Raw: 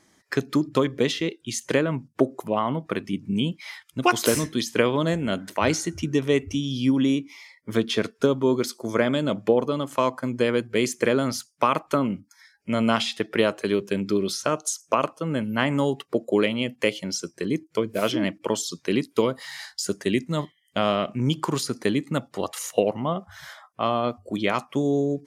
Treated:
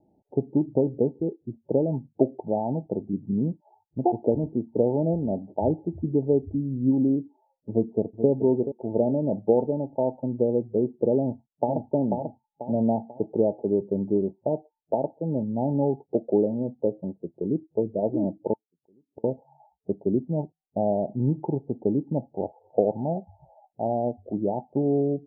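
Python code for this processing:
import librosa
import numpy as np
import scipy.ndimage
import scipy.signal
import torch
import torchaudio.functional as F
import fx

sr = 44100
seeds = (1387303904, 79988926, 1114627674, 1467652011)

y = fx.echo_throw(x, sr, start_s=7.7, length_s=0.58, ms=430, feedback_pct=30, wet_db=-10.5)
y = fx.echo_throw(y, sr, start_s=11.19, length_s=0.69, ms=490, feedback_pct=40, wet_db=-4.0)
y = fx.gate_flip(y, sr, shuts_db=-25.0, range_db=-37, at=(18.53, 19.24))
y = scipy.signal.sosfilt(scipy.signal.cheby1(10, 1.0, 890.0, 'lowpass', fs=sr, output='sos'), y)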